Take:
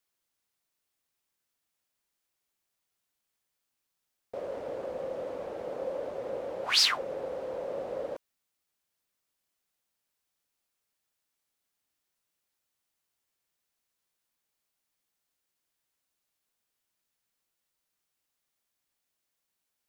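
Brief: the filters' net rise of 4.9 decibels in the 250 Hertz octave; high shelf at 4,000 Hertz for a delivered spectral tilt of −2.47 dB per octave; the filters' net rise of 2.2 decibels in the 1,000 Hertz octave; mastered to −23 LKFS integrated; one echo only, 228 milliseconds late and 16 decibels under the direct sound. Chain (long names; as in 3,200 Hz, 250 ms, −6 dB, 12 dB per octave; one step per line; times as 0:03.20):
parametric band 250 Hz +6.5 dB
parametric band 1,000 Hz +3 dB
high-shelf EQ 4,000 Hz −7.5 dB
single-tap delay 228 ms −16 dB
level +10 dB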